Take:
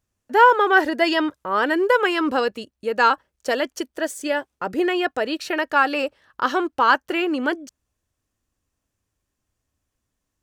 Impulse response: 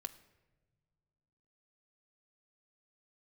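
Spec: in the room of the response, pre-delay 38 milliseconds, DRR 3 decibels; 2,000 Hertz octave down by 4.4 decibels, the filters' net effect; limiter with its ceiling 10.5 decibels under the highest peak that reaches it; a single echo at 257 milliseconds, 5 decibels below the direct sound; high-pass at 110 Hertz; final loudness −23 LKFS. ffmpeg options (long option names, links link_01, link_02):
-filter_complex "[0:a]highpass=110,equalizer=frequency=2000:width_type=o:gain=-6.5,alimiter=limit=-14.5dB:level=0:latency=1,aecho=1:1:257:0.562,asplit=2[link_01][link_02];[1:a]atrim=start_sample=2205,adelay=38[link_03];[link_02][link_03]afir=irnorm=-1:irlink=0,volume=0dB[link_04];[link_01][link_04]amix=inputs=2:normalize=0,volume=-0.5dB"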